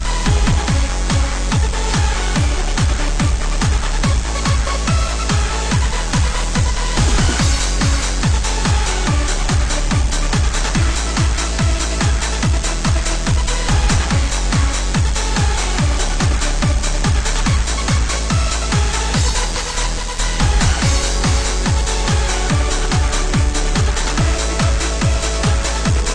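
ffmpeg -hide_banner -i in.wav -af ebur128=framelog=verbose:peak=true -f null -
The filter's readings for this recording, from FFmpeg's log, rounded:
Integrated loudness:
  I:         -17.3 LUFS
  Threshold: -27.3 LUFS
Loudness range:
  LRA:         1.0 LU
  Threshold: -37.3 LUFS
  LRA low:   -17.8 LUFS
  LRA high:  -16.8 LUFS
True peak:
  Peak:       -5.0 dBFS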